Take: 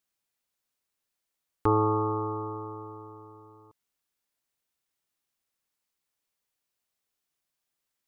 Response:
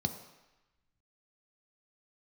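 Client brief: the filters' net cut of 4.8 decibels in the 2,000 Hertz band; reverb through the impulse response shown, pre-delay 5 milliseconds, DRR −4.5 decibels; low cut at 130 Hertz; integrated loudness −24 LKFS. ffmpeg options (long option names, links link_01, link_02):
-filter_complex "[0:a]highpass=130,equalizer=frequency=2000:width_type=o:gain=-7,asplit=2[link_01][link_02];[1:a]atrim=start_sample=2205,adelay=5[link_03];[link_02][link_03]afir=irnorm=-1:irlink=0,volume=1dB[link_04];[link_01][link_04]amix=inputs=2:normalize=0,volume=-2dB"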